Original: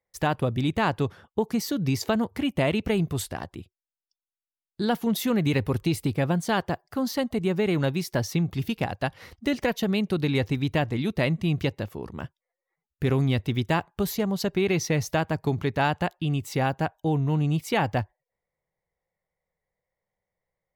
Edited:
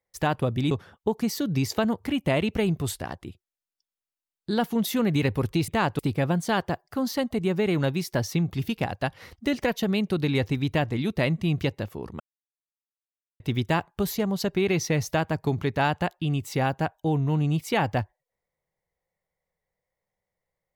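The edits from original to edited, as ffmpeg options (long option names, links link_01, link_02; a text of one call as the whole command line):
ffmpeg -i in.wav -filter_complex "[0:a]asplit=6[link_01][link_02][link_03][link_04][link_05][link_06];[link_01]atrim=end=0.712[link_07];[link_02]atrim=start=1.018:end=5.992[link_08];[link_03]atrim=start=0.708:end=1.022[link_09];[link_04]atrim=start=5.988:end=12.2,asetpts=PTS-STARTPTS,afade=type=out:start_time=6.208:duration=0.004:curve=hsin[link_10];[link_05]atrim=start=12.2:end=13.4,asetpts=PTS-STARTPTS,volume=0[link_11];[link_06]atrim=start=13.4,asetpts=PTS-STARTPTS,afade=type=in:duration=0.004:curve=hsin[link_12];[link_07][link_08]acrossfade=duration=0.004:curve1=hsin:curve2=hsin[link_13];[link_13][link_09]acrossfade=duration=0.004:curve1=hsin:curve2=hsin[link_14];[link_10][link_11][link_12]concat=n=3:v=0:a=1[link_15];[link_14][link_15]acrossfade=duration=0.004:curve1=hsin:curve2=hsin" out.wav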